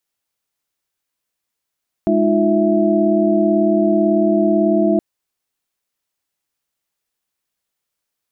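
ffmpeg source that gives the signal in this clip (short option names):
-f lavfi -i "aevalsrc='0.133*(sin(2*PI*207.65*t)+sin(2*PI*311.13*t)+sin(2*PI*349.23*t)+sin(2*PI*659.26*t))':d=2.92:s=44100"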